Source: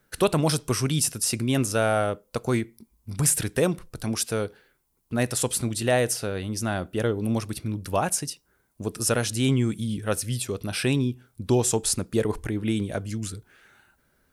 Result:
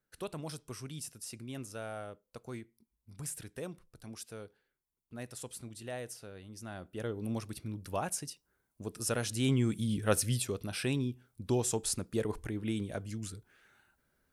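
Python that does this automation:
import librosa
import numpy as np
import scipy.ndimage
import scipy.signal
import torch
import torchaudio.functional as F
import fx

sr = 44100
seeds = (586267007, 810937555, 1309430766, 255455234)

y = fx.gain(x, sr, db=fx.line((6.52, -19.0), (7.24, -10.5), (8.98, -10.5), (10.21, -1.5), (10.73, -9.0)))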